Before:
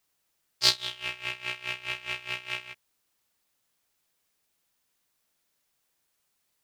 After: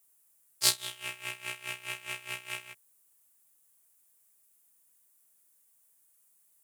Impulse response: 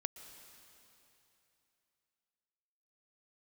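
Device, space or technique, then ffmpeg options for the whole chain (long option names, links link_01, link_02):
budget condenser microphone: -af "highpass=frequency=81:width=0.5412,highpass=frequency=81:width=1.3066,highshelf=frequency=6600:width_type=q:width=1.5:gain=13,volume=-3.5dB"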